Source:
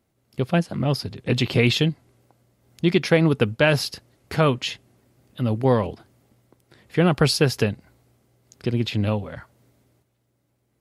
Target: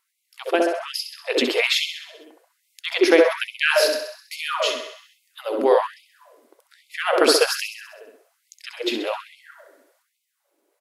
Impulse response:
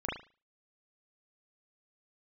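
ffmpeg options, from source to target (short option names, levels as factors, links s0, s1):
-filter_complex "[0:a]aecho=1:1:65|130|195|260|325|390|455:0.355|0.209|0.124|0.0729|0.043|0.0254|0.015,asplit=2[s0][s1];[1:a]atrim=start_sample=2205,asetrate=24696,aresample=44100,highshelf=f=7100:g=10.5[s2];[s1][s2]afir=irnorm=-1:irlink=0,volume=0.335[s3];[s0][s3]amix=inputs=2:normalize=0,afftfilt=real='re*gte(b*sr/1024,250*pow(2100/250,0.5+0.5*sin(2*PI*1.2*pts/sr)))':imag='im*gte(b*sr/1024,250*pow(2100/250,0.5+0.5*sin(2*PI*1.2*pts/sr)))':win_size=1024:overlap=0.75"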